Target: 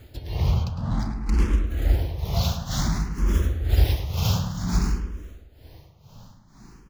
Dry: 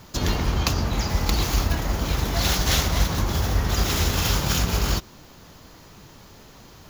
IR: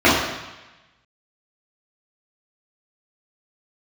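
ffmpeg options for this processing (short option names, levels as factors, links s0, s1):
-filter_complex "[0:a]asettb=1/sr,asplit=3[s0][s1][s2];[s0]atrim=end=0.644[s3];[s1]atrim=start=0.64:end=1.67,asetpts=PTS-STARTPTS,afade=t=in:d=0.004:c=qsin,afade=t=out:st=1.026:d=0.004:c=qsin,adynamicsmooth=sensitivity=5:basefreq=990[s4];[s2]atrim=start=1.666[s5];[s3][s4]acrossfade=d=0.004:c1=hsin:c2=qsin[s6];[s6][s5]acrossfade=d=0.004:c1=qsin:c2=hsin,tremolo=f=2.1:d=0.87,lowshelf=f=270:g=11,asplit=2[s7][s8];[s8]adelay=106,lowpass=f=2900:p=1,volume=0.447,asplit=2[s9][s10];[s10]adelay=106,lowpass=f=2900:p=1,volume=0.54,asplit=2[s11][s12];[s12]adelay=106,lowpass=f=2900:p=1,volume=0.54,asplit=2[s13][s14];[s14]adelay=106,lowpass=f=2900:p=1,volume=0.54,asplit=2[s15][s16];[s16]adelay=106,lowpass=f=2900:p=1,volume=0.54,asplit=2[s17][s18];[s18]adelay=106,lowpass=f=2900:p=1,volume=0.54,asplit=2[s19][s20];[s20]adelay=106,lowpass=f=2900:p=1,volume=0.54[s21];[s7][s9][s11][s13][s15][s17][s19][s21]amix=inputs=8:normalize=0,asplit=2[s22][s23];[s23]afreqshift=0.55[s24];[s22][s24]amix=inputs=2:normalize=1,volume=0.708"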